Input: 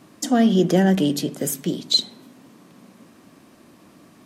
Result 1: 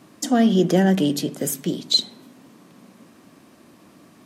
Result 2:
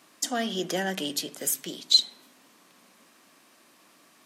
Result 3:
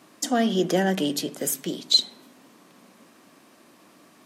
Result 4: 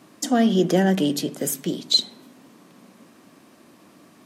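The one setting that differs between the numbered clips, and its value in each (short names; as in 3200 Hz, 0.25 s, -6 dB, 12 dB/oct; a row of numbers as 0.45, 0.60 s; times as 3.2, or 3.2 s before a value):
HPF, cutoff: 52, 1500, 470, 180 Hz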